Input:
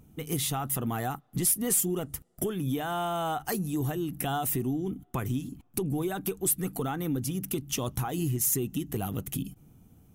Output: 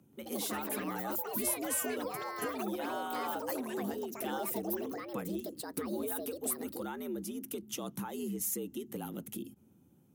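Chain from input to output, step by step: frequency shift +73 Hz; ever faster or slower copies 131 ms, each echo +6 st, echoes 3; trim -8.5 dB

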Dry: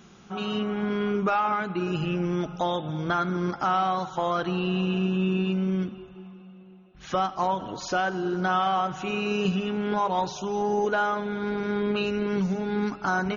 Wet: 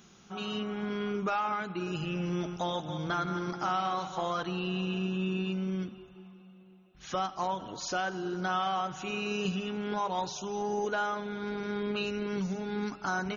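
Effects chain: 2.02–4.43 s: backward echo that repeats 137 ms, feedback 46%, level -8 dB; treble shelf 4 kHz +10 dB; trim -7 dB

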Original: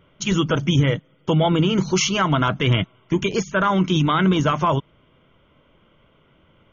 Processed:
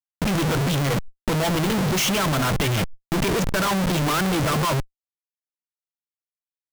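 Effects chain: peaking EQ 67 Hz -5 dB 0.53 oct; level-controlled noise filter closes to 1.2 kHz, open at -14 dBFS; Schmitt trigger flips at -34 dBFS; swell ahead of each attack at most 42 dB/s

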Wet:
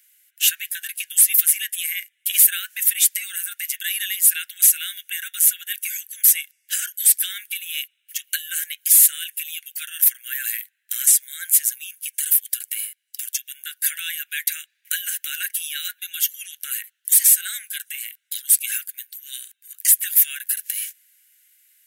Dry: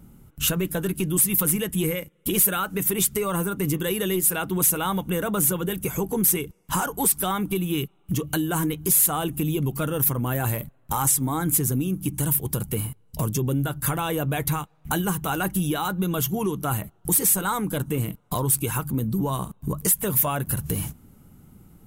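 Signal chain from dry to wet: steep high-pass 1.6 kHz 96 dB/octave; trim +6.5 dB

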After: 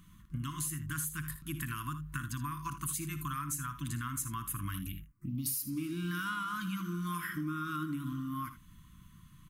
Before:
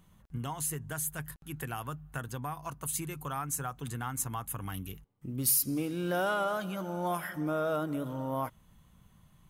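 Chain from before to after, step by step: FFT band-reject 350–980 Hz; compression 6:1, threshold -38 dBFS, peak gain reduction 14 dB; early reflections 58 ms -13 dB, 79 ms -13.5 dB; 4.87–5.46 s: touch-sensitive phaser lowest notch 440 Hz, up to 1.6 kHz, full sweep at -38 dBFS; trim +4 dB

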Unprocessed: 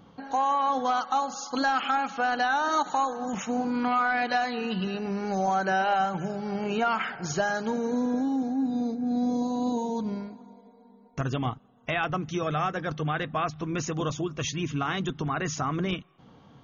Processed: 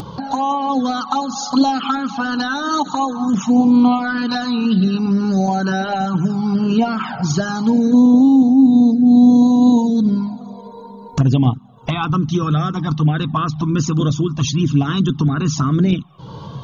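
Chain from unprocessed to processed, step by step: graphic EQ 125/250/500/1000/2000/4000 Hz +8/+9/-3/+8/-11/+9 dB; upward compressor, threshold -21 dBFS; touch-sensitive flanger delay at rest 3 ms, full sweep at -15.5 dBFS; trim +7.5 dB

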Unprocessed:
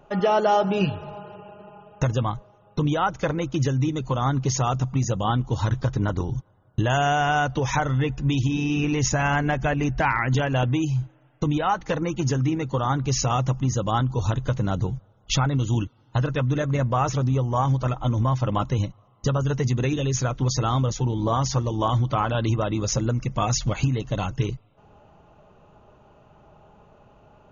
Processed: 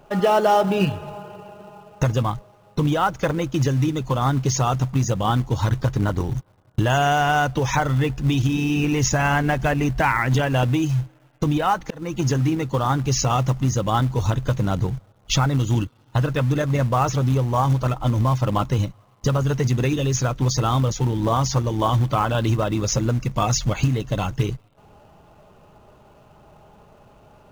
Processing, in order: 11.48–12.15 s: slow attack 290 ms; in parallel at -9.5 dB: companded quantiser 4-bit

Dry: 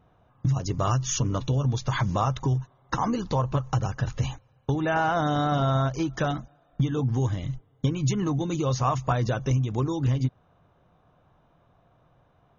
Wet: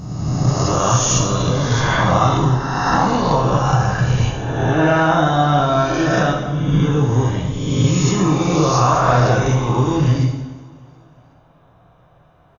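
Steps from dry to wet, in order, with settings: reverse spectral sustain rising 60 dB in 1.55 s; on a send: feedback delay 364 ms, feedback 52%, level -24 dB; on the sum: plate-style reverb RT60 1.1 s, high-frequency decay 0.8×, DRR -1 dB; trim +4 dB

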